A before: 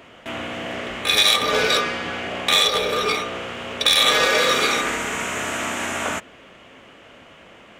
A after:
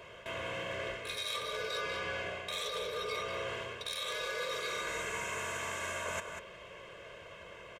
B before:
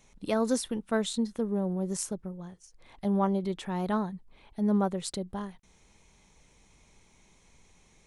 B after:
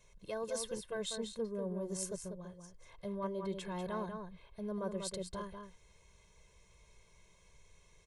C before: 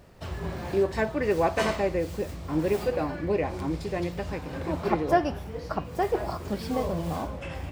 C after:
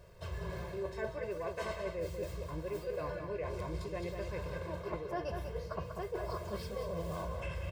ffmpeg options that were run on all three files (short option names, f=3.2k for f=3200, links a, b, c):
-filter_complex "[0:a]aecho=1:1:1.9:0.98,areverse,acompressor=threshold=-28dB:ratio=10,areverse,asplit=2[a][b];[b]adelay=192.4,volume=-6dB,highshelf=f=4k:g=-4.33[c];[a][c]amix=inputs=2:normalize=0,volume=-7.5dB"